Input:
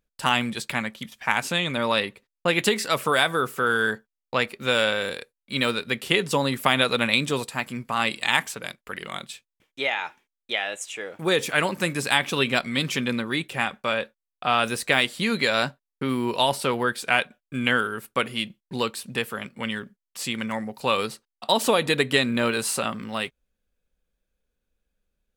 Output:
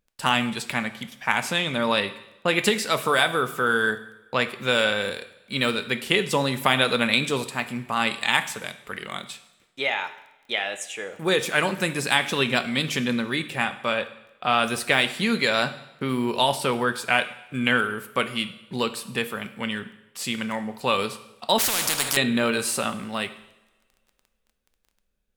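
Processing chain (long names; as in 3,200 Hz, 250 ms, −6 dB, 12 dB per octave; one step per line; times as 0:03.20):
surface crackle 10 per second −43 dBFS
coupled-rooms reverb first 0.81 s, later 2.3 s, from −22 dB, DRR 10 dB
0:21.58–0:22.17: every bin compressed towards the loudest bin 10 to 1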